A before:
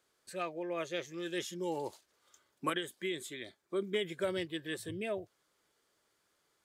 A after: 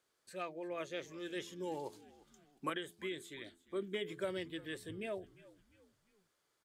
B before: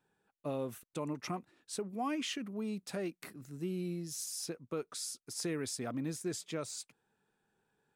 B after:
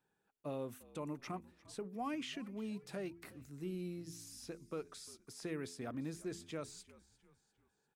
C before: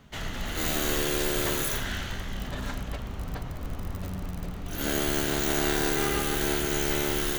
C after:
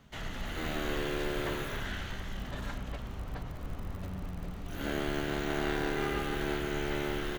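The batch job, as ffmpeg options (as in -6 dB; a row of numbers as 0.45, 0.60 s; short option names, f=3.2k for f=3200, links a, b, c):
-filter_complex "[0:a]acrossover=split=3500[a][b];[b]acompressor=threshold=-47dB:ratio=4:attack=1:release=60[c];[a][c]amix=inputs=2:normalize=0,bandreject=f=85.18:t=h:w=4,bandreject=f=170.36:t=h:w=4,bandreject=f=255.54:t=h:w=4,bandreject=f=340.72:t=h:w=4,bandreject=f=425.9:t=h:w=4,asplit=4[d][e][f][g];[e]adelay=350,afreqshift=-68,volume=-20dB[h];[f]adelay=700,afreqshift=-136,volume=-27.1dB[i];[g]adelay=1050,afreqshift=-204,volume=-34.3dB[j];[d][h][i][j]amix=inputs=4:normalize=0,volume=-4.5dB"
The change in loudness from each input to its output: -5.0, -6.0, -7.0 LU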